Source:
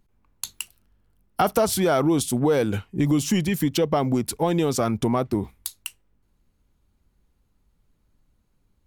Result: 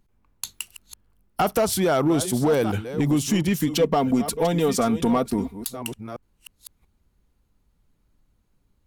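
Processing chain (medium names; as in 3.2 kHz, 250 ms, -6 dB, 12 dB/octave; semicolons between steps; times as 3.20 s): chunks repeated in reverse 685 ms, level -12 dB; hard clipper -14.5 dBFS, distortion -22 dB; 3.68–5.77 s: comb 4.3 ms, depth 56%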